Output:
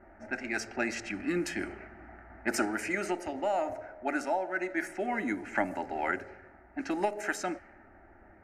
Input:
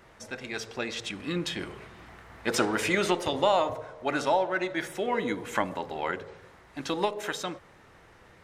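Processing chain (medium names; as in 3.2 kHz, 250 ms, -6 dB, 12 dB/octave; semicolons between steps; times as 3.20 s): static phaser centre 710 Hz, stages 8; gain riding within 5 dB 0.5 s; level-controlled noise filter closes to 960 Hz, open at -28 dBFS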